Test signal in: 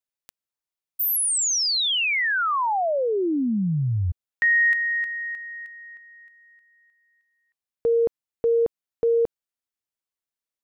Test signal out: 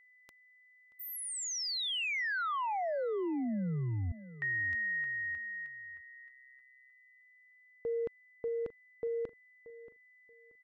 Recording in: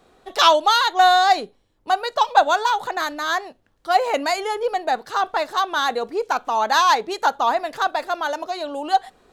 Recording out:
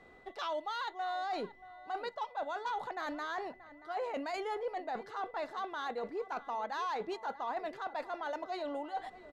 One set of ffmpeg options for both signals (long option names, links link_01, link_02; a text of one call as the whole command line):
ffmpeg -i in.wav -filter_complex "[0:a]aemphasis=mode=reproduction:type=75kf,areverse,acompressor=threshold=-28dB:ratio=12:attack=0.43:release=167:knee=6:detection=rms,areverse,asplit=2[link_01][link_02];[link_02]adelay=630,lowpass=frequency=1800:poles=1,volume=-15.5dB,asplit=2[link_03][link_04];[link_04]adelay=630,lowpass=frequency=1800:poles=1,volume=0.26,asplit=2[link_05][link_06];[link_06]adelay=630,lowpass=frequency=1800:poles=1,volume=0.26[link_07];[link_01][link_03][link_05][link_07]amix=inputs=4:normalize=0,aeval=exprs='val(0)+0.00141*sin(2*PI*2000*n/s)':channel_layout=same,volume=-3.5dB" out.wav